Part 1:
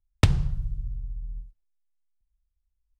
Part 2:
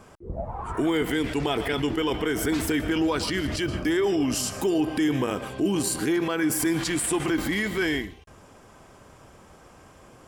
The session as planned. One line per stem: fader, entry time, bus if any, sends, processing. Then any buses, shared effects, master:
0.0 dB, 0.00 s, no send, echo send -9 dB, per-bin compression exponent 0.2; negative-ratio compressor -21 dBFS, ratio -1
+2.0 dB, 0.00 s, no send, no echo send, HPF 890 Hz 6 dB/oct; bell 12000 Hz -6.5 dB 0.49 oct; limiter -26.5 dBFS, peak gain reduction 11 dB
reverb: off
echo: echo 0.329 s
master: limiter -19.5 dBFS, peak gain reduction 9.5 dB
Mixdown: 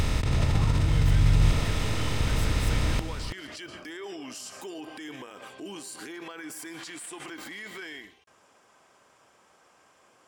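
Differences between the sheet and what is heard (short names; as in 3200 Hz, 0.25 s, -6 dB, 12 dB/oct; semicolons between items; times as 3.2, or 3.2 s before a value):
stem 2 +2.0 dB -> -5.0 dB; master: missing limiter -19.5 dBFS, peak gain reduction 9.5 dB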